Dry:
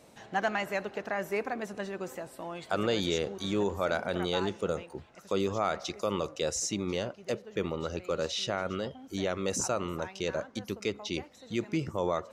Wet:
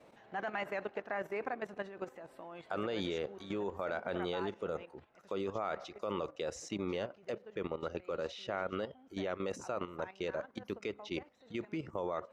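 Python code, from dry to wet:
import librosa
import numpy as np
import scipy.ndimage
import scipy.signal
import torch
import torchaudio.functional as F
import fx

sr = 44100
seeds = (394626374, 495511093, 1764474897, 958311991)

y = fx.bass_treble(x, sr, bass_db=-6, treble_db=-15)
y = fx.level_steps(y, sr, step_db=12)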